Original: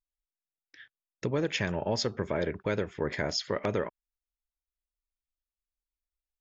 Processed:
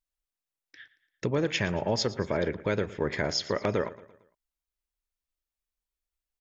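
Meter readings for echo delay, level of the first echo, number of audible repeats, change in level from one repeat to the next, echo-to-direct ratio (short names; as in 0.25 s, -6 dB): 0.114 s, -18.0 dB, 3, -6.5 dB, -17.0 dB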